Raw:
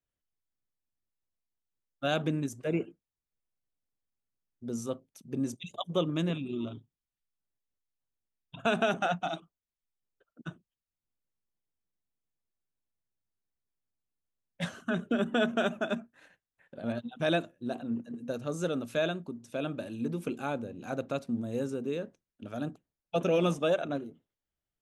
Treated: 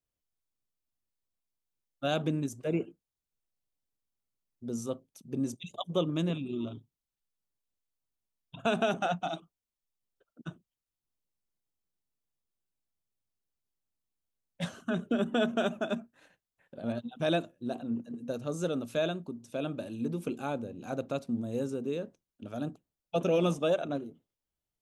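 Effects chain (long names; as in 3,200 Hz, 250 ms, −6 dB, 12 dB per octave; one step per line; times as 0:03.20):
parametric band 1,800 Hz −5 dB 0.94 octaves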